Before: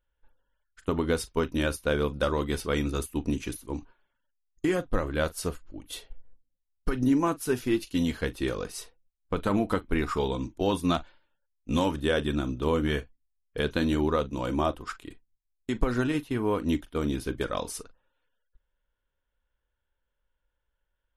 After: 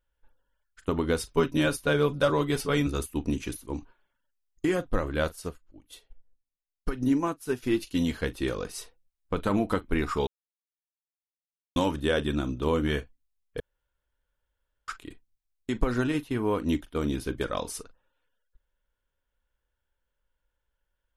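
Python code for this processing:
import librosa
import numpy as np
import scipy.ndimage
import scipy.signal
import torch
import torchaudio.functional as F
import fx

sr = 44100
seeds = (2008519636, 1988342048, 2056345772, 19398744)

y = fx.comb(x, sr, ms=7.0, depth=0.91, at=(1.28, 2.87))
y = fx.upward_expand(y, sr, threshold_db=-46.0, expansion=1.5, at=(5.35, 7.62), fade=0.02)
y = fx.edit(y, sr, fx.silence(start_s=10.27, length_s=1.49),
    fx.room_tone_fill(start_s=13.6, length_s=1.28), tone=tone)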